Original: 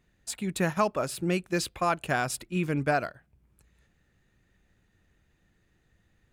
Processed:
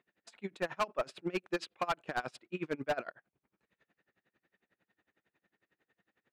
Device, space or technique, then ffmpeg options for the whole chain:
helicopter radio: -af "highpass=320,lowpass=3000,aeval=exprs='val(0)*pow(10,-27*(0.5-0.5*cos(2*PI*11*n/s))/20)':c=same,asoftclip=type=hard:threshold=0.0376,volume=1.33"

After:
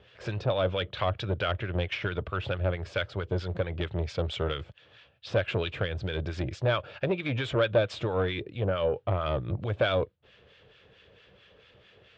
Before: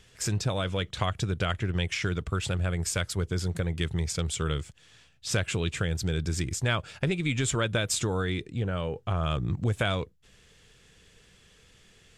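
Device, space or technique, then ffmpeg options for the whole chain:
guitar amplifier with harmonic tremolo: -filter_complex "[0:a]acrossover=split=1100[s0][s1];[s0]aeval=exprs='val(0)*(1-0.7/2+0.7/2*cos(2*PI*4.5*n/s))':c=same[s2];[s1]aeval=exprs='val(0)*(1-0.7/2-0.7/2*cos(2*PI*4.5*n/s))':c=same[s3];[s2][s3]amix=inputs=2:normalize=0,asoftclip=type=tanh:threshold=0.0531,highpass=91,equalizer=f=160:t=q:w=4:g=-9,equalizer=f=240:t=q:w=4:g=-7,equalizer=f=570:t=q:w=4:g=9,equalizer=f=2000:t=q:w=4:g=-4,lowpass=f=3500:w=0.5412,lowpass=f=3500:w=1.3066,volume=2.11"

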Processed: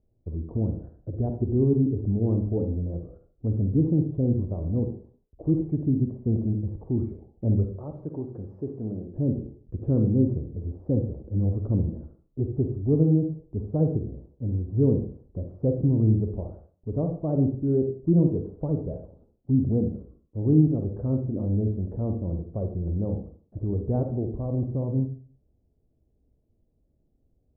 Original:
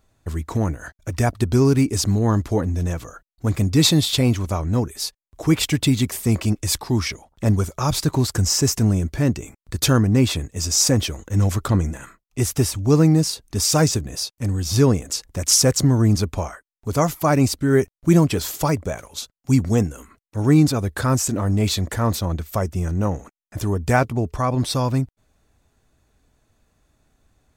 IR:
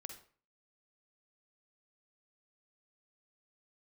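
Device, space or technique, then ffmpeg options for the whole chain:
next room: -filter_complex "[0:a]asettb=1/sr,asplit=3[s0][s1][s2];[s0]atrim=end=7.664[s3];[s1]atrim=start=7.66:end=9.16,asetpts=PTS-STARTPTS,afade=t=in:d=0.004:c=qsin,afade=t=out:st=1.496:d=0.004:c=qsin,aemphasis=mode=production:type=riaa[s4];[s2]atrim=start=9.156[s5];[s3][s4]acrossfade=d=0.004:c1=hsin:c2=qsin[s6];[s6][s5]acrossfade=d=0.004:c1=qsin:c2=hsin,lowpass=f=540:w=0.5412,lowpass=f=540:w=1.3066[s7];[1:a]atrim=start_sample=2205[s8];[s7][s8]afir=irnorm=-1:irlink=0"

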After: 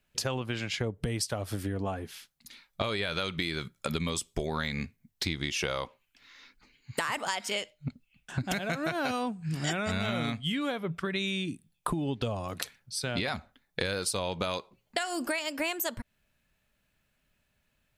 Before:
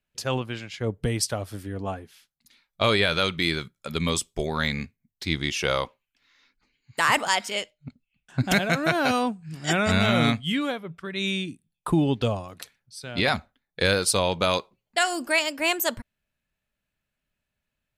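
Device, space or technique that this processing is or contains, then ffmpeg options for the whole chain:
serial compression, peaks first: -af "acompressor=threshold=0.0251:ratio=6,acompressor=threshold=0.0112:ratio=2,volume=2.51"

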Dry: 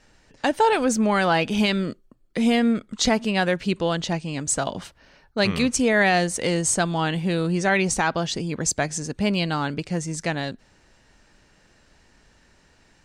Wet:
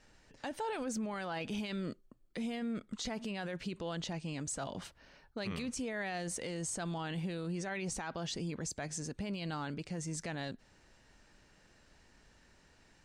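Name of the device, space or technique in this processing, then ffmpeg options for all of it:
stacked limiters: -af "alimiter=limit=0.168:level=0:latency=1:release=25,alimiter=limit=0.1:level=0:latency=1:release=304,alimiter=limit=0.0631:level=0:latency=1:release=12,volume=0.473"

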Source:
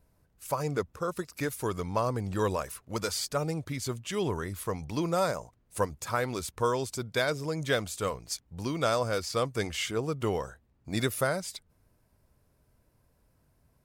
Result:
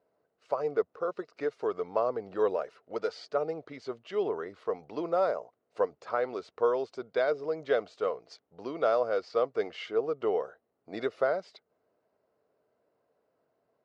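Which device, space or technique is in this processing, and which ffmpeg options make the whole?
phone earpiece: -filter_complex "[0:a]asettb=1/sr,asplit=3[s0][s1][s2];[s0]atrim=end=2.514[s3];[s1]atrim=start=2.51:end=3.27,asetpts=PTS-STARTPTS,afade=t=in:d=0.004:c=qsin,afade=t=out:st=0.756:d=0.004:c=qsin,bandreject=f=1100:w=6.9[s4];[s2]atrim=start=3.266[s5];[s3][s4]acrossfade=d=0.004:c1=hsin:c2=qsin[s6];[s6][s5]acrossfade=d=0.004:c1=qsin:c2=hsin,highpass=410,equalizer=f=440:t=q:w=4:g=7,equalizer=f=670:t=q:w=4:g=5,equalizer=f=960:t=q:w=4:g=-5,equalizer=f=1700:t=q:w=4:g=-6,equalizer=f=2400:t=q:w=4:g=-9,equalizer=f=3400:t=q:w=4:g=-9,lowpass=f=3500:w=0.5412,lowpass=f=3500:w=1.3066"

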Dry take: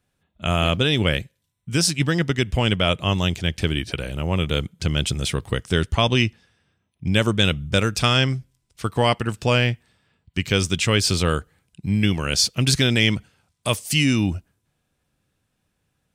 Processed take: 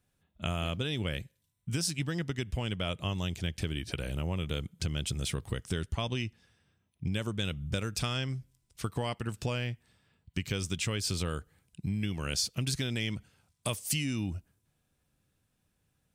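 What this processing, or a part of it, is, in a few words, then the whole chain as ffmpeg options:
ASMR close-microphone chain: -af "lowshelf=f=240:g=4,acompressor=threshold=0.0631:ratio=5,highshelf=f=7300:g=6.5,volume=0.501"

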